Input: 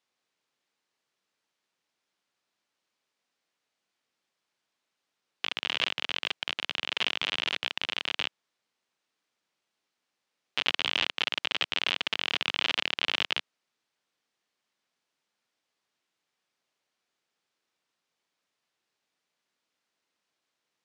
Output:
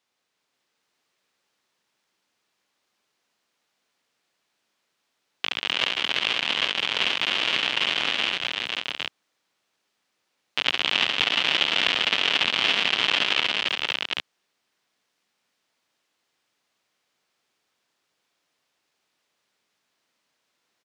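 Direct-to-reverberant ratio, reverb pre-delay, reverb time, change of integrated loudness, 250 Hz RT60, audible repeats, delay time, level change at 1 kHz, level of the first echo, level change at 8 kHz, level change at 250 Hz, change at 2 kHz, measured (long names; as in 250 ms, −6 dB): no reverb audible, no reverb audible, no reverb audible, +6.5 dB, no reverb audible, 6, 69 ms, +7.5 dB, −8.5 dB, +7.5 dB, +7.5 dB, +7.5 dB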